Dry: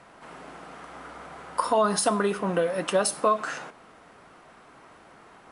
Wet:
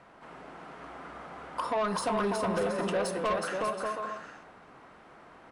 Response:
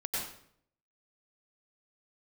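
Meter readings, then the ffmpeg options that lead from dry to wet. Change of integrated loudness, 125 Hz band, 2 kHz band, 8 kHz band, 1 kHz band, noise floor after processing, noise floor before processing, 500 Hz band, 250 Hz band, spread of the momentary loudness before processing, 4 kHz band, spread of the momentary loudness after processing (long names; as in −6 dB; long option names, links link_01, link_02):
−5.5 dB, −3.0 dB, −3.0 dB, −11.5 dB, −4.5 dB, −55 dBFS, −53 dBFS, −4.5 dB, −3.5 dB, 20 LU, −6.0 dB, 18 LU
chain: -af "aemphasis=mode=reproduction:type=50kf,aecho=1:1:370|592|725.2|805.1|853.1:0.631|0.398|0.251|0.158|0.1,asoftclip=type=tanh:threshold=-21dB,volume=-3dB"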